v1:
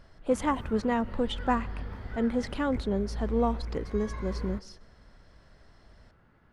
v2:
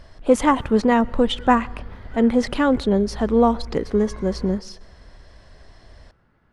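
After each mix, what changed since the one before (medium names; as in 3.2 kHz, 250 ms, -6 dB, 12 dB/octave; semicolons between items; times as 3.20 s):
speech +10.5 dB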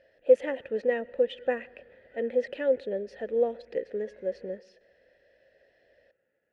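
master: add vowel filter e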